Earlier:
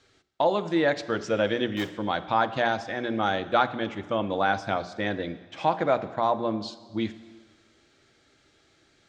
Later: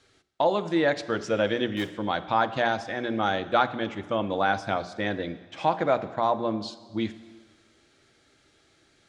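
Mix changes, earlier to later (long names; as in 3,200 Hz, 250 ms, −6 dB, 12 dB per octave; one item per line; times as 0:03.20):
background −3.5 dB
master: add parametric band 10,000 Hz +12.5 dB 0.26 octaves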